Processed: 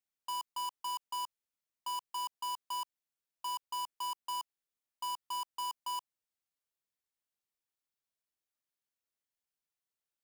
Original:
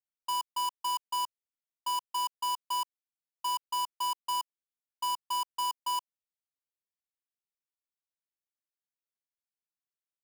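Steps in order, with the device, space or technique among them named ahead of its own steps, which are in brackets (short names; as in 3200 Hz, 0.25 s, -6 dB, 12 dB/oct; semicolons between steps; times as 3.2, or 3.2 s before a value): limiter into clipper (limiter -32 dBFS, peak gain reduction 2 dB; hard clip -37 dBFS, distortion -23 dB); gain +1 dB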